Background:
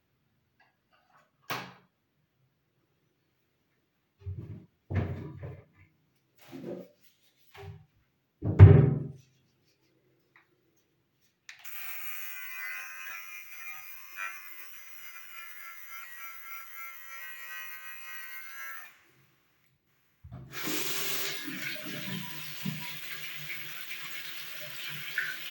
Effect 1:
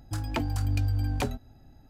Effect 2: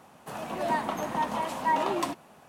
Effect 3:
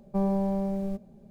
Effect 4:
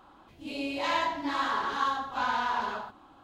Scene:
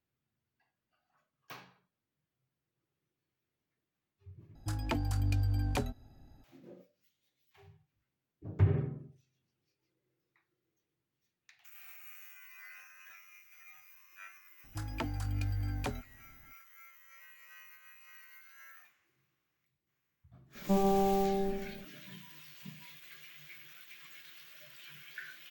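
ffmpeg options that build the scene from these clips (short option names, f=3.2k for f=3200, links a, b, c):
-filter_complex "[1:a]asplit=2[a][b];[0:a]volume=-13.5dB[c];[b]equalizer=f=1.5k:w=1.2:g=3.5[d];[3:a]aecho=1:1:69|138|207|276|345|414|483|552|621:0.708|0.418|0.246|0.145|0.0858|0.0506|0.0299|0.0176|0.0104[e];[c]asplit=2[f][g];[f]atrim=end=4.554[h];[a]atrim=end=1.89,asetpts=PTS-STARTPTS,volume=-4dB[i];[g]atrim=start=6.436[j];[d]atrim=end=1.89,asetpts=PTS-STARTPTS,volume=-8dB,afade=t=in:d=0.004:c=hsin,afade=t=out:st=1.886:d=0.004:c=hsin,adelay=14640[k];[e]atrim=end=1.3,asetpts=PTS-STARTPTS,volume=-1dB,afade=t=in:d=0.004:c=hsin,afade=t=out:st=1.296:d=0.004:c=hsin,adelay=20550[l];[h][i]acrossfade=d=0.004:c1=hsin:c2=hsin[m];[m][j]acrossfade=d=0.004:c1=hsin:c2=hsin[n];[n][k][l]amix=inputs=3:normalize=0"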